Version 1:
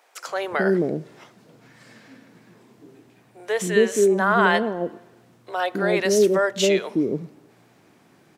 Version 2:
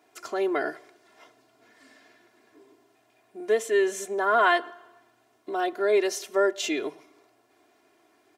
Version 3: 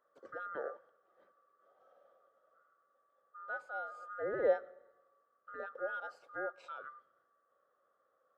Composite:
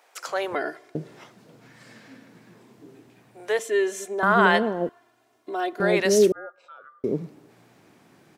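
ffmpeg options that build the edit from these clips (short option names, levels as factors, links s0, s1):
-filter_complex "[1:a]asplit=3[s0][s1][s2];[0:a]asplit=5[s3][s4][s5][s6][s7];[s3]atrim=end=0.552[s8];[s0]atrim=start=0.548:end=0.952[s9];[s4]atrim=start=0.948:end=3.592[s10];[s1]atrim=start=3.588:end=4.232[s11];[s5]atrim=start=4.228:end=4.892[s12];[s2]atrim=start=4.888:end=5.802[s13];[s6]atrim=start=5.798:end=6.322[s14];[2:a]atrim=start=6.318:end=7.042[s15];[s7]atrim=start=7.038[s16];[s8][s9]acrossfade=d=0.004:c1=hsin:c2=hsin[s17];[s17][s10]acrossfade=d=0.004:c1=hsin:c2=hsin[s18];[s18][s11]acrossfade=d=0.004:c1=hsin:c2=hsin[s19];[s19][s12]acrossfade=d=0.004:c1=hsin:c2=hsin[s20];[s20][s13]acrossfade=d=0.004:c1=hsin:c2=hsin[s21];[s21][s14]acrossfade=d=0.004:c1=hsin:c2=hsin[s22];[s22][s15]acrossfade=d=0.004:c1=hsin:c2=hsin[s23];[s23][s16]acrossfade=d=0.004:c1=hsin:c2=hsin"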